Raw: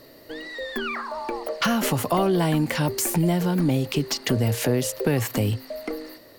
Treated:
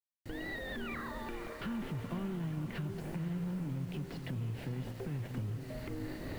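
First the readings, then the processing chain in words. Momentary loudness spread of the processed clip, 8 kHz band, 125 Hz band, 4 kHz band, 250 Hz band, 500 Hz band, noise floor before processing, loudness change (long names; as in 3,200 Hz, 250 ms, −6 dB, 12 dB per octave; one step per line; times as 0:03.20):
4 LU, −28.5 dB, −12.5 dB, −20.0 dB, −14.5 dB, −19.0 dB, −49 dBFS, −15.5 dB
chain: camcorder AGC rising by 54 dB per second
noise gate with hold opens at −26 dBFS
guitar amp tone stack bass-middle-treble 6-0-2
in parallel at −7 dB: sample-rate reduction 1,200 Hz, jitter 20%
on the sum: brickwall limiter −34 dBFS, peak gain reduction 9.5 dB
high-frequency loss of the air 480 metres
soft clipping −36 dBFS, distortion −20 dB
bit reduction 11 bits
downward compressor, threshold −44 dBFS, peak gain reduction 4.5 dB
feedback delay with all-pass diffusion 511 ms, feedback 43%, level −8 dB
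level +8.5 dB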